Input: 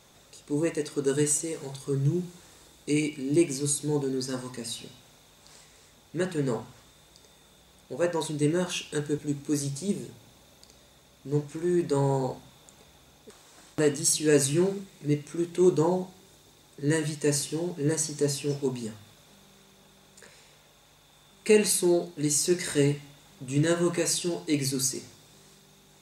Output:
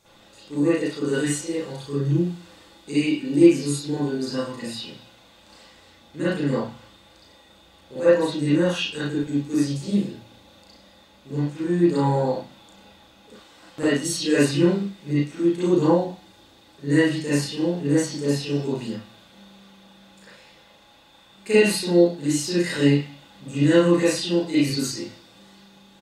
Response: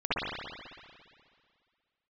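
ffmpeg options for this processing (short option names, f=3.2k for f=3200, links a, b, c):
-filter_complex "[0:a]asplit=2[a][b];[b]adelay=35,volume=-3dB[c];[a][c]amix=inputs=2:normalize=0[d];[1:a]atrim=start_sample=2205,atrim=end_sample=4410,asetrate=52920,aresample=44100[e];[d][e]afir=irnorm=-1:irlink=0,volume=-2dB"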